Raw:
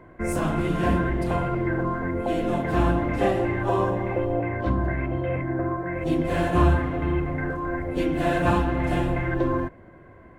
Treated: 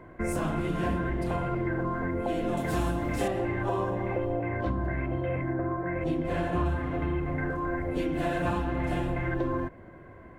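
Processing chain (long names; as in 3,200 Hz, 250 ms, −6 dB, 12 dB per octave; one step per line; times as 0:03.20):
0:02.57–0:03.28: bass and treble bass +1 dB, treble +15 dB
downward compressor 3 to 1, threshold −27 dBFS, peak gain reduction 10 dB
0:05.53–0:06.66: high-shelf EQ 5,100 Hz −8.5 dB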